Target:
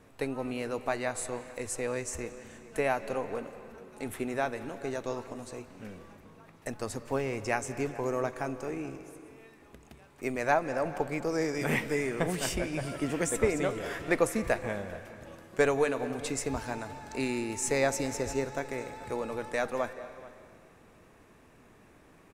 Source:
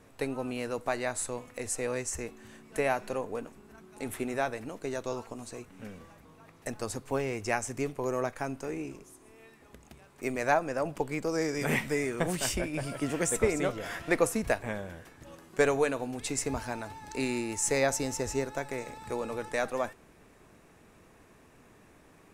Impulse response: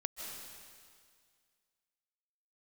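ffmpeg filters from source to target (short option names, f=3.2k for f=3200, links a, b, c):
-filter_complex "[0:a]asplit=2[a][b];[b]adelay=431.5,volume=-19dB,highshelf=f=4k:g=-9.71[c];[a][c]amix=inputs=2:normalize=0,asplit=2[d][e];[1:a]atrim=start_sample=2205,asetrate=39690,aresample=44100,lowpass=5.1k[f];[e][f]afir=irnorm=-1:irlink=0,volume=-8.5dB[g];[d][g]amix=inputs=2:normalize=0,volume=-2.5dB"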